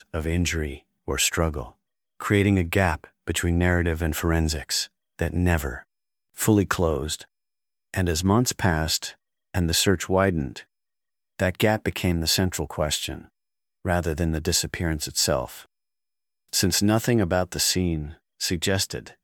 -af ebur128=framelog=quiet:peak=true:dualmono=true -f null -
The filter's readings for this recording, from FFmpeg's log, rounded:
Integrated loudness:
  I:         -21.1 LUFS
  Threshold: -31.6 LUFS
Loudness range:
  LRA:         2.2 LU
  Threshold: -41.9 LUFS
  LRA low:   -23.1 LUFS
  LRA high:  -20.9 LUFS
True peak:
  Peak:       -4.7 dBFS